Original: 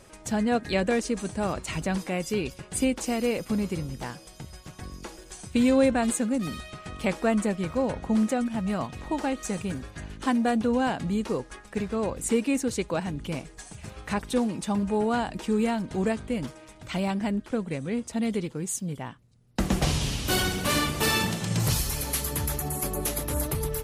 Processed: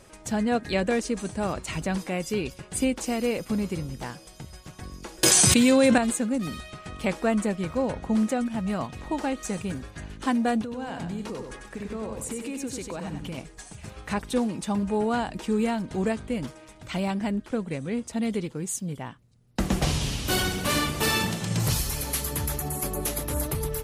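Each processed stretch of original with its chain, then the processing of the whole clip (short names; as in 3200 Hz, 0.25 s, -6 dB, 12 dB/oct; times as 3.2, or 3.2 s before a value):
5.23–5.98 HPF 100 Hz 24 dB/oct + high shelf 2100 Hz +8.5 dB + fast leveller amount 100%
10.62–13.38 compressor 12:1, threshold -30 dBFS + feedback echo 95 ms, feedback 31%, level -5 dB
whole clip: dry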